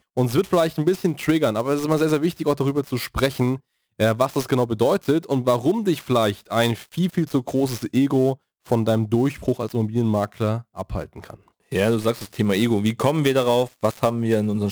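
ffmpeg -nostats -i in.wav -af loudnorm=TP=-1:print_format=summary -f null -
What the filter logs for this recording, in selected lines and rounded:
Input Integrated:    -21.7 LUFS
Input True Peak:      -5.4 dBTP
Input LRA:             2.6 LU
Input Threshold:     -31.9 LUFS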